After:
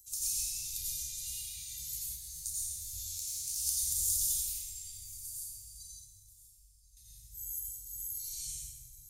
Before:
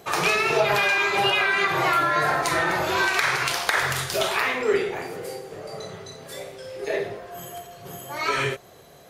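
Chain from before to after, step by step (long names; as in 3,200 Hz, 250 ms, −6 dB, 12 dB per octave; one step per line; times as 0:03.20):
inverse Chebyshev band-stop filter 280–1,500 Hz, stop band 80 dB
0:05.92–0:06.97: guitar amp tone stack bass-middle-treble 10-0-1
feedback echo with a high-pass in the loop 1,032 ms, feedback 27%, level −22 dB
dense smooth reverb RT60 1.8 s, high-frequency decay 0.5×, pre-delay 75 ms, DRR −7.5 dB
0:02.15–0:03.65: micro pitch shift up and down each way 46 cents → 57 cents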